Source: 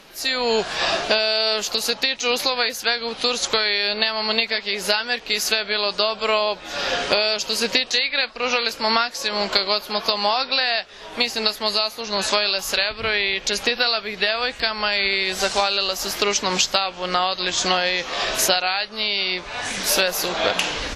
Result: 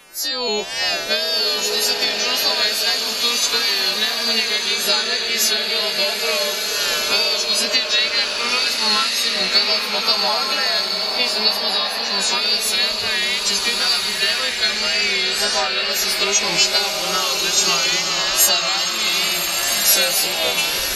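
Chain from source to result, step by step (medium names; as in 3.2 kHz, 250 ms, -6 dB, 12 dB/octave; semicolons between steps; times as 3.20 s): partials quantised in pitch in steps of 2 st; wow and flutter 79 cents; flange 0.19 Hz, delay 0.1 ms, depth 1 ms, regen -36%; swelling reverb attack 1510 ms, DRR 1 dB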